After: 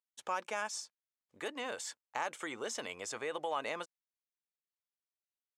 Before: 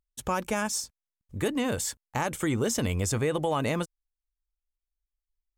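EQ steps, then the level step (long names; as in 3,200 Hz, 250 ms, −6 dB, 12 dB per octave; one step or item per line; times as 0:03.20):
high-pass filter 620 Hz 12 dB per octave
high-frequency loss of the air 73 metres
−5.0 dB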